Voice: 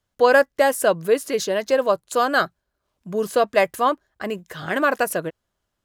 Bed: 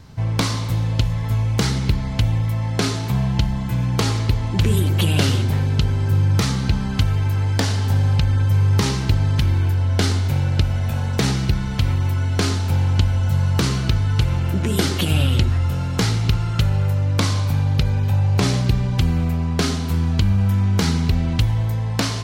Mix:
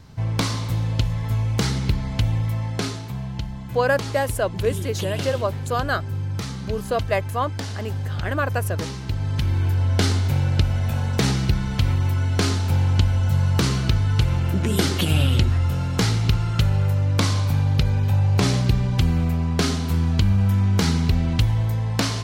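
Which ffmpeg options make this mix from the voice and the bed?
ffmpeg -i stem1.wav -i stem2.wav -filter_complex "[0:a]adelay=3550,volume=-5dB[link_01];[1:a]volume=6.5dB,afade=type=out:start_time=2.54:duration=0.57:silence=0.421697,afade=type=in:start_time=9.02:duration=0.8:silence=0.354813[link_02];[link_01][link_02]amix=inputs=2:normalize=0" out.wav

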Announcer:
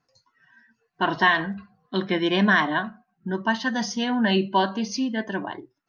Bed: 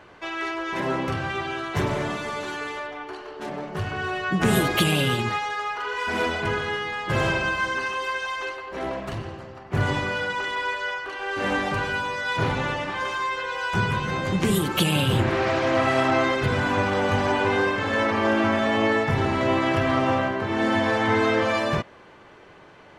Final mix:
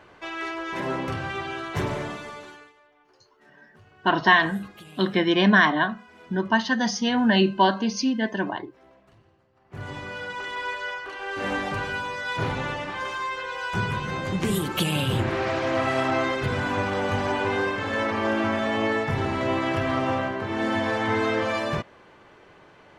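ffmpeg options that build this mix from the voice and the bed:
ffmpeg -i stem1.wav -i stem2.wav -filter_complex "[0:a]adelay=3050,volume=2dB[link_01];[1:a]volume=20dB,afade=type=out:start_time=1.87:duration=0.86:silence=0.0707946,afade=type=in:start_time=9.52:duration=1.19:silence=0.0749894[link_02];[link_01][link_02]amix=inputs=2:normalize=0" out.wav

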